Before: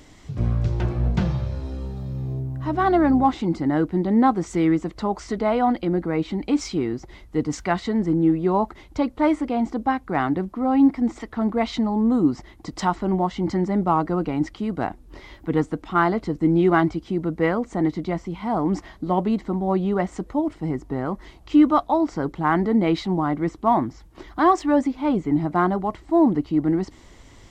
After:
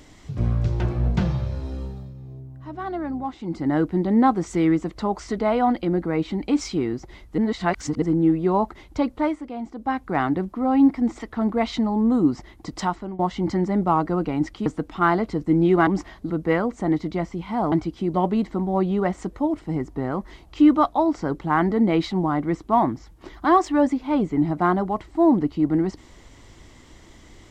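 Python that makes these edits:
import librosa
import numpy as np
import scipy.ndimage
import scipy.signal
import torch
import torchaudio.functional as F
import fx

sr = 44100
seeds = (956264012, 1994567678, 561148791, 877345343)

y = fx.edit(x, sr, fx.fade_down_up(start_s=1.81, length_s=1.91, db=-11.0, fade_s=0.33),
    fx.reverse_span(start_s=7.38, length_s=0.64),
    fx.fade_down_up(start_s=9.15, length_s=0.84, db=-9.0, fade_s=0.21),
    fx.fade_out_to(start_s=12.76, length_s=0.43, floor_db=-18.0),
    fx.cut(start_s=14.66, length_s=0.94),
    fx.swap(start_s=16.81, length_s=0.42, other_s=18.65, other_length_s=0.43), tone=tone)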